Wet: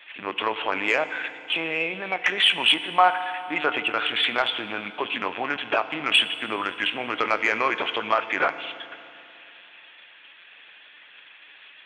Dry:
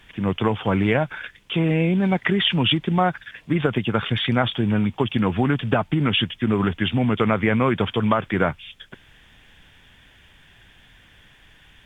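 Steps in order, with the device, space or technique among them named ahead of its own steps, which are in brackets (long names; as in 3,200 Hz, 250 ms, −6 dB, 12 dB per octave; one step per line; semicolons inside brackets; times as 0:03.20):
talking toy (linear-prediction vocoder at 8 kHz pitch kept; high-pass filter 690 Hz 12 dB per octave; parametric band 2,500 Hz +7.5 dB 0.24 octaves; soft clipping −11 dBFS, distortion −20 dB)
0:02.66–0:03.81: dynamic equaliser 930 Hz, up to +6 dB, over −37 dBFS, Q 1
feedback delay network reverb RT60 2.7 s, high-frequency decay 0.9×, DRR 11 dB
level +2.5 dB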